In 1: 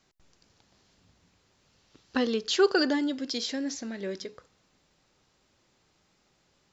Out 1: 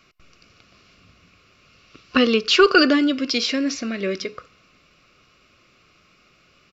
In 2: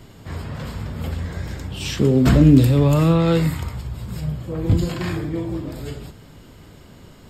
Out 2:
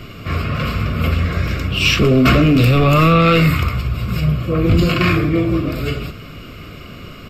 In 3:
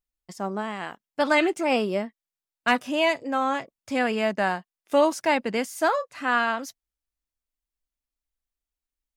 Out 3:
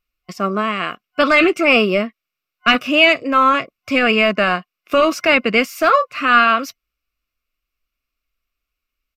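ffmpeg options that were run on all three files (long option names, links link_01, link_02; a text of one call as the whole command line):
ffmpeg -i in.wav -af "aresample=32000,aresample=44100,apsyclip=17.5dB,superequalizer=9b=0.316:10b=2.24:12b=2.82:15b=0.447:16b=0.316,volume=-8dB" out.wav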